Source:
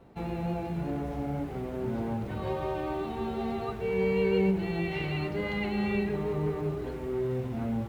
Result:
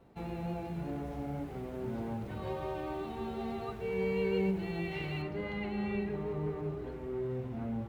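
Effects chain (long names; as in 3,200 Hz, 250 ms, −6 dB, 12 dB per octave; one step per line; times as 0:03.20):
high-shelf EQ 3,900 Hz +2 dB, from 0:05.22 −8.5 dB
level −5.5 dB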